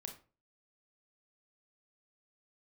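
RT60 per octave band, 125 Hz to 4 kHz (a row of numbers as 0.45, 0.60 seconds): 0.45, 0.40, 0.40, 0.35, 0.30, 0.25 seconds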